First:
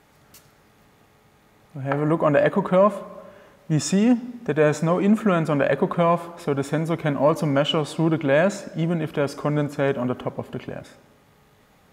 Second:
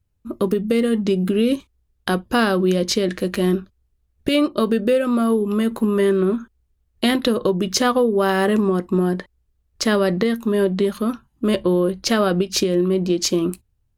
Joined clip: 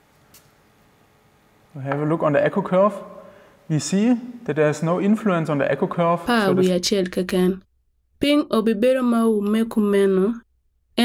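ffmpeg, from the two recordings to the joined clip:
ffmpeg -i cue0.wav -i cue1.wav -filter_complex "[0:a]apad=whole_dur=11.04,atrim=end=11.04,atrim=end=6.72,asetpts=PTS-STARTPTS[link_01];[1:a]atrim=start=2.29:end=7.09,asetpts=PTS-STARTPTS[link_02];[link_01][link_02]acrossfade=duration=0.48:curve1=log:curve2=log" out.wav

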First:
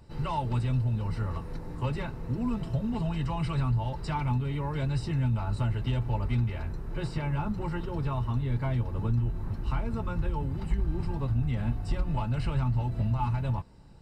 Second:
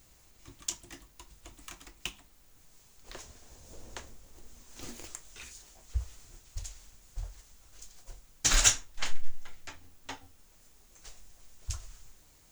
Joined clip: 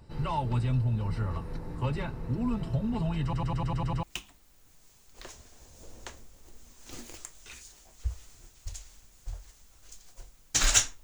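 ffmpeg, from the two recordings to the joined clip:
ffmpeg -i cue0.wav -i cue1.wav -filter_complex "[0:a]apad=whole_dur=11.03,atrim=end=11.03,asplit=8[link_01][link_02][link_03][link_04][link_05][link_06][link_07][link_08];[link_01]atrim=end=3.332[link_09];[link_02]atrim=start=3.228:end=3.332[link_10];[link_03]atrim=start=3.228:end=3.332[link_11];[link_04]atrim=start=3.228:end=3.332[link_12];[link_05]atrim=start=3.228:end=3.332[link_13];[link_06]atrim=start=3.228:end=3.332[link_14];[link_07]atrim=start=3.228:end=3.332[link_15];[link_08]atrim=start=3.228:end=3.332[link_16];[1:a]atrim=start=1.928:end=8.93[link_17];[link_09][link_10]acrossfade=duration=0.004:curve1=hsin:curve2=hsin[link_18];[link_18][link_11]acrossfade=duration=0.004:curve1=hsin:curve2=hsin[link_19];[link_19][link_12]acrossfade=duration=0.004:curve1=hsin:curve2=hsin[link_20];[link_20][link_13]acrossfade=duration=0.004:curve1=hsin:curve2=hsin[link_21];[link_21][link_14]acrossfade=duration=0.004:curve1=hsin:curve2=hsin[link_22];[link_22][link_15]acrossfade=duration=0.004:curve1=hsin:curve2=hsin[link_23];[link_23][link_16]acrossfade=duration=0.004:curve1=hsin:curve2=hsin[link_24];[link_24][link_17]acrossfade=duration=0.004:curve1=hsin:curve2=hsin" out.wav

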